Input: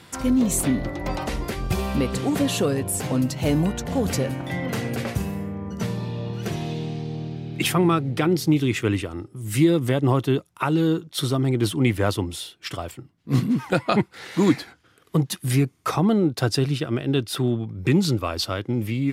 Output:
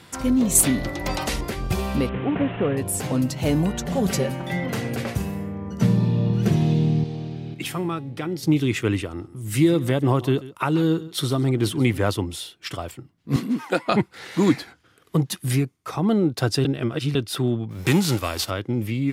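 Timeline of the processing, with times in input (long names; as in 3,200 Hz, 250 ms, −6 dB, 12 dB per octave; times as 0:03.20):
0:00.55–0:01.41: high-shelf EQ 2,300 Hz +10 dB
0:02.09–0:02.77: variable-slope delta modulation 16 kbit/s
0:03.73–0:04.64: comb filter 5.2 ms
0:05.82–0:07.04: parametric band 170 Hz +11 dB 2.1 octaves
0:07.54–0:08.43: tuned comb filter 280 Hz, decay 0.58 s
0:09.07–0:11.99: single-tap delay 136 ms −17.5 dB
0:13.36–0:13.88: high-pass filter 220 Hz 24 dB per octave
0:15.52–0:16.12: duck −10 dB, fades 0.26 s
0:16.65–0:17.15: reverse
0:17.70–0:18.49: spectral envelope flattened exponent 0.6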